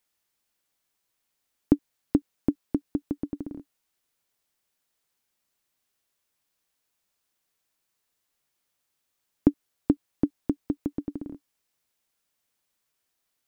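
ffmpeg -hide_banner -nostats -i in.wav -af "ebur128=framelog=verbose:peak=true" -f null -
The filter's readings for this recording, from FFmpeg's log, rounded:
Integrated loudness:
  I:         -30.4 LUFS
  Threshold: -40.8 LUFS
Loudness range:
  LRA:         6.7 LU
  Threshold: -53.6 LUFS
  LRA low:   -38.5 LUFS
  LRA high:  -31.8 LUFS
True peak:
  Peak:       -5.0 dBFS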